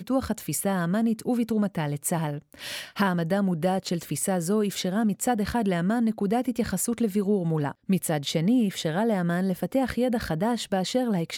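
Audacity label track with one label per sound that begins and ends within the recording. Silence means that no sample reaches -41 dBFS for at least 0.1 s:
2.530000	7.720000	sound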